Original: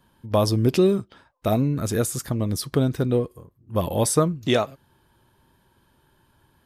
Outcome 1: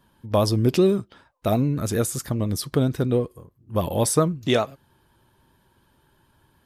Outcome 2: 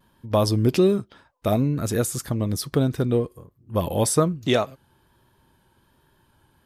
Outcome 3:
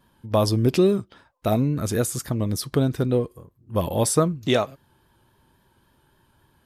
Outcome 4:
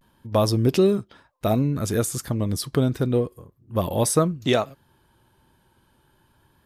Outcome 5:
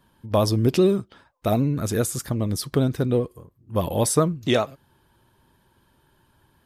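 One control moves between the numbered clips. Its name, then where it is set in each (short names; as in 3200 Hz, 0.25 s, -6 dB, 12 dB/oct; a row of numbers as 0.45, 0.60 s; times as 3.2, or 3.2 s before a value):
vibrato, rate: 9.8, 1.2, 3.6, 0.31, 15 Hz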